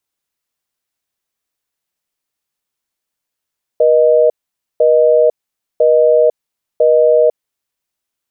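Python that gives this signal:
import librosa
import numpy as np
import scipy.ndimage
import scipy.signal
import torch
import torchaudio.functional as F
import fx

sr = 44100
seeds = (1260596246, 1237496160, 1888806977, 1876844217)

y = fx.call_progress(sr, length_s=3.9, kind='busy tone', level_db=-9.5)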